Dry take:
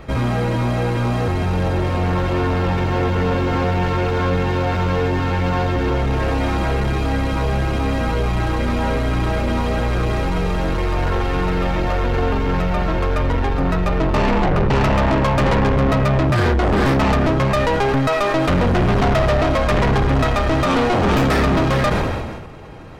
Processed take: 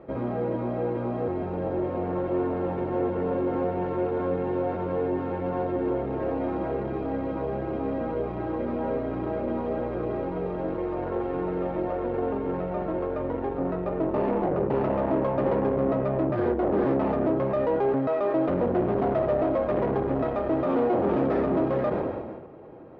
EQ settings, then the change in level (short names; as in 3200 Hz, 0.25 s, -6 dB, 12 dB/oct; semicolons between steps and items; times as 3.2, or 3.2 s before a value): band-pass 430 Hz, Q 1.8; air absorption 130 m; bell 440 Hz -6.5 dB 0.21 oct; 0.0 dB